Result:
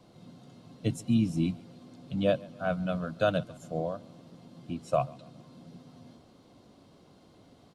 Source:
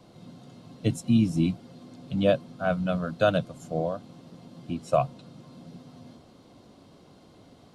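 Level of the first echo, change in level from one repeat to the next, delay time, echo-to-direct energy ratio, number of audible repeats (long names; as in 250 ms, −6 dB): −23.0 dB, −6.5 dB, 138 ms, −22.0 dB, 2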